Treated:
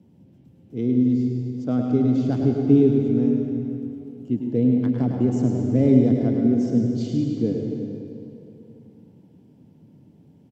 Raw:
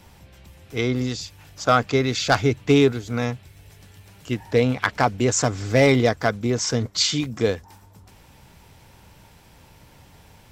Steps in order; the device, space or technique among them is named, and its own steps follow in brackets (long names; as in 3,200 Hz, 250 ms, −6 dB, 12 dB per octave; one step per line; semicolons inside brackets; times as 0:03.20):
PA in a hall (high-pass filter 120 Hz 24 dB per octave; parametric band 3,000 Hz +5 dB 0.22 octaves; single-tap delay 104 ms −7 dB; convolution reverb RT60 2.9 s, pre-delay 103 ms, DRR 2.5 dB)
drawn EQ curve 130 Hz 0 dB, 250 Hz +5 dB, 1,200 Hz −26 dB